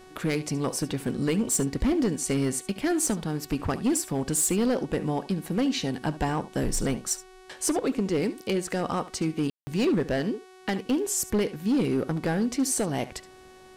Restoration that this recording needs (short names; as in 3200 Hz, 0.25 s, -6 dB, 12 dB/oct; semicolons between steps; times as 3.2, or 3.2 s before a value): clip repair -19 dBFS; de-hum 372.7 Hz, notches 32; room tone fill 9.5–9.67; inverse comb 72 ms -17 dB